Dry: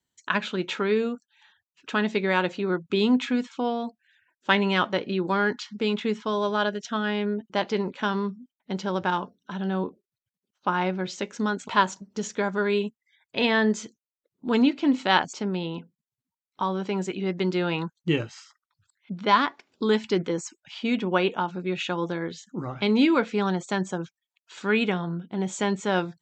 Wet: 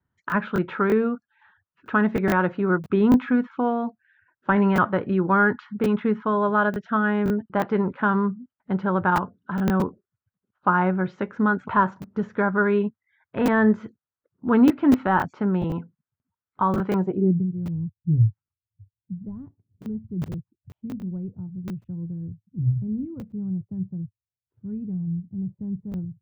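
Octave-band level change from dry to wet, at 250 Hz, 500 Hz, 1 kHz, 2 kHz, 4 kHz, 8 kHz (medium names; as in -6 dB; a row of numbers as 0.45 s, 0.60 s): +3.5 dB, +0.5 dB, +2.0 dB, +0.5 dB, under -15 dB, under -10 dB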